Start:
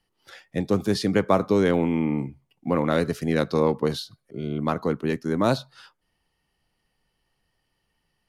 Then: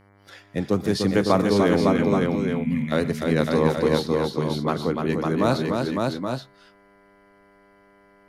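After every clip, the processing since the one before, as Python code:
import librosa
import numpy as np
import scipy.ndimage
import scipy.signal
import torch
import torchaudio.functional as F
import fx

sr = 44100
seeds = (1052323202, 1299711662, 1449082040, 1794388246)

y = fx.spec_box(x, sr, start_s=1.81, length_s=1.11, low_hz=260.0, high_hz=1700.0, gain_db=-24)
y = fx.dmg_buzz(y, sr, base_hz=100.0, harmonics=23, level_db=-56.0, tilt_db=-4, odd_only=False)
y = fx.echo_multitap(y, sr, ms=(123, 297, 555, 823, 839), db=(-19.0, -5.0, -3.5, -7.5, -15.0))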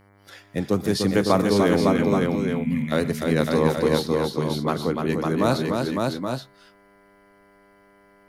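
y = fx.high_shelf(x, sr, hz=9600.0, db=9.5)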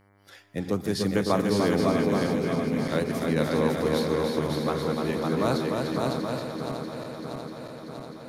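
y = fx.reverse_delay_fb(x, sr, ms=320, feedback_pct=82, wet_db=-8)
y = F.gain(torch.from_numpy(y), -5.0).numpy()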